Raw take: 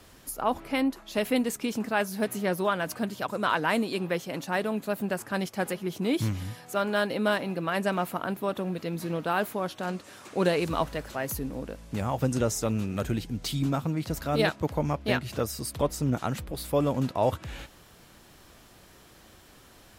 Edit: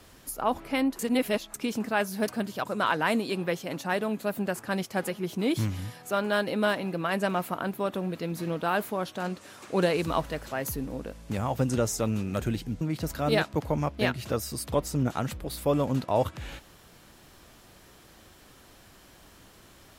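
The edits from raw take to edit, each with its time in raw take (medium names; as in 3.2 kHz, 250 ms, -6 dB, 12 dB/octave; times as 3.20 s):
0.99–1.54 s: reverse
2.28–2.91 s: delete
13.44–13.88 s: delete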